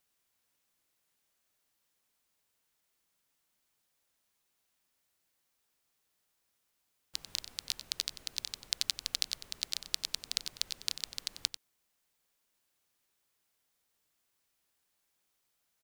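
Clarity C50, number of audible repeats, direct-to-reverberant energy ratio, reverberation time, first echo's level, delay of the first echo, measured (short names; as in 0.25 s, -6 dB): none, 1, none, none, -12.0 dB, 93 ms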